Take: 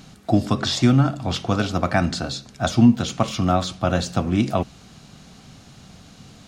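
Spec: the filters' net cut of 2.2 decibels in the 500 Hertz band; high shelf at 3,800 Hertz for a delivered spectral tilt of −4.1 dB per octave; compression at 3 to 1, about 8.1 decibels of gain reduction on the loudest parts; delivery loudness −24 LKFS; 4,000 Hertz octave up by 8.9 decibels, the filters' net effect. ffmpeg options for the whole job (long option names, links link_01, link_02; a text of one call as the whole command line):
ffmpeg -i in.wav -af "equalizer=frequency=500:width_type=o:gain=-3.5,highshelf=frequency=3800:gain=6,equalizer=frequency=4000:width_type=o:gain=7,acompressor=threshold=-20dB:ratio=3" out.wav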